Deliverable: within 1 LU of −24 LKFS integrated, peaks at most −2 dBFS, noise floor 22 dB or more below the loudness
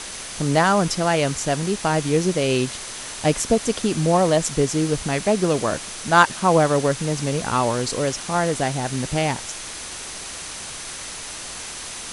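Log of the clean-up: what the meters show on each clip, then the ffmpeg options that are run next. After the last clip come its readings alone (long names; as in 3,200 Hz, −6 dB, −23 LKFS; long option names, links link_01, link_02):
interfering tone 6,100 Hz; level of the tone −43 dBFS; background noise floor −34 dBFS; target noise floor −44 dBFS; integrated loudness −22.0 LKFS; sample peak −1.5 dBFS; target loudness −24.0 LKFS
→ -af "bandreject=frequency=6100:width=30"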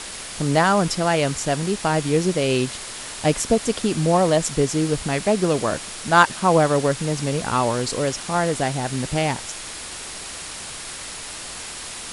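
interfering tone none found; background noise floor −34 dBFS; target noise floor −44 dBFS
→ -af "afftdn=noise_reduction=10:noise_floor=-34"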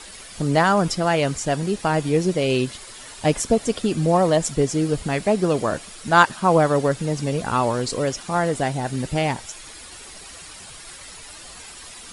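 background noise floor −41 dBFS; target noise floor −44 dBFS
→ -af "afftdn=noise_reduction=6:noise_floor=-41"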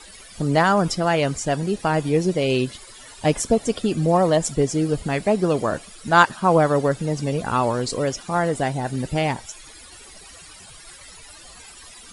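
background noise floor −44 dBFS; integrated loudness −21.5 LKFS; sample peak −1.5 dBFS; target loudness −24.0 LKFS
→ -af "volume=-2.5dB"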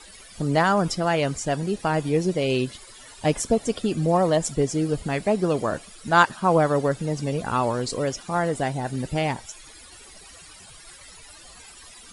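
integrated loudness −24.0 LKFS; sample peak −4.0 dBFS; background noise floor −47 dBFS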